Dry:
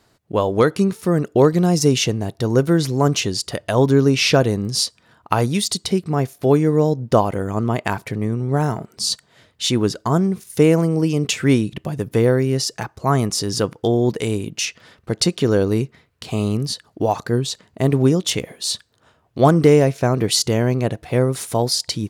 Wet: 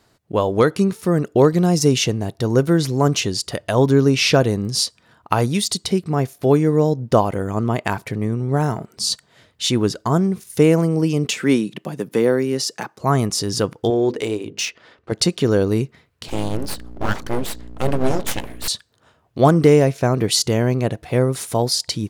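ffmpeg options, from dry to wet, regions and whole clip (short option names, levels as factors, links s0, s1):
-filter_complex "[0:a]asettb=1/sr,asplit=3[s0][s1][s2];[s0]atrim=end=11.264[s3];[s1]atrim=start=11.26:end=13,asetpts=PTS-STARTPTS,afade=t=in:d=0.004:c=qsin,afade=t=out:st=1.736:d=0.004:c=qsin,highpass=f=170:w=0.5412,highpass=f=170:w=1.3066,deesser=0.35,bandreject=f=670:w=18[s4];[s2]atrim=start=12.996[s5];[s3][s4]acrossfade=d=0.004:c1=hsin:c2=qsin[s6];[s6][s5]acrossfade=d=0.004:c1=qsin:c2=hsin,asettb=1/sr,asplit=3[s7][s8][s9];[s7]atrim=end=13.904[s10];[s8]atrim=start=13.9:end=15.12,asetpts=PTS-STARTPTS,afade=t=in:d=0.004:c=qsin,afade=t=out:st=1.216:d=0.004:c=qsin,lowshelf=f=250:t=q:w=1.5:g=-6.5,bandreject=f=50:t=h:w=6,bandreject=f=100:t=h:w=6,bandreject=f=150:t=h:w=6,bandreject=f=200:t=h:w=6,bandreject=f=250:t=h:w=6,bandreject=f=300:t=h:w=6,bandreject=f=350:t=h:w=6,bandreject=f=400:t=h:w=6,bandreject=f=450:t=h:w=6,bandreject=f=500:t=h:w=6,adynamicsmooth=sensitivity=5:basefreq=4900[s11];[s9]atrim=start=15.116[s12];[s10][s11]acrossfade=d=0.004:c1=hsin:c2=qsin[s13];[s13][s12]acrossfade=d=0.004:c1=qsin:c2=hsin,asettb=1/sr,asplit=3[s14][s15][s16];[s14]atrim=end=16.284[s17];[s15]atrim=start=16.28:end=18.68,asetpts=PTS-STARTPTS,afade=t=in:d=0.004:c=qsin,afade=t=out:st=2.396:d=0.004:c=qsin,aeval=exprs='val(0)+0.0251*(sin(2*PI*60*n/s)+sin(2*PI*2*60*n/s)/2+sin(2*PI*3*60*n/s)/3+sin(2*PI*4*60*n/s)/4+sin(2*PI*5*60*n/s)/5)':c=same,bandreject=f=50:t=h:w=6,bandreject=f=100:t=h:w=6,bandreject=f=150:t=h:w=6,bandreject=f=200:t=h:w=6,bandreject=f=250:t=h:w=6,bandreject=f=300:t=h:w=6,bandreject=f=350:t=h:w=6,bandreject=f=400:t=h:w=6,bandreject=f=450:t=h:w=6,bandreject=f=500:t=h:w=6,aeval=exprs='abs(val(0))':c=same[s18];[s16]atrim=start=18.676[s19];[s17][s18]acrossfade=d=0.004:c1=hsin:c2=qsin[s20];[s20][s19]acrossfade=d=0.004:c1=qsin:c2=hsin"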